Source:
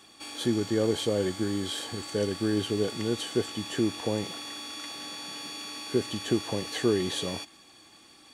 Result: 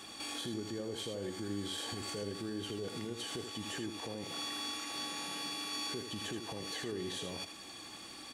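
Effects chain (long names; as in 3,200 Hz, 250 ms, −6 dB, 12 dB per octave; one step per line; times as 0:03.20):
downward compressor 6 to 1, threshold −40 dBFS, peak gain reduction 18.5 dB
brickwall limiter −36.5 dBFS, peak gain reduction 9 dB
single-tap delay 79 ms −7.5 dB
level +5 dB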